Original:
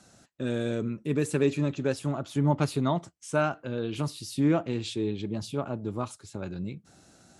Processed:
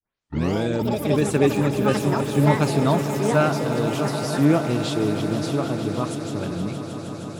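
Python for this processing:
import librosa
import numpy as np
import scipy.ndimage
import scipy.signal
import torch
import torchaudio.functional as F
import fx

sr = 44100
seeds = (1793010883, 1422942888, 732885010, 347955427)

y = fx.tape_start_head(x, sr, length_s=0.63)
y = fx.echo_pitch(y, sr, ms=102, semitones=6, count=2, db_per_echo=-6.0)
y = fx.echo_swell(y, sr, ms=156, loudest=5, wet_db=-14.0)
y = F.gain(torch.from_numpy(y), 5.5).numpy()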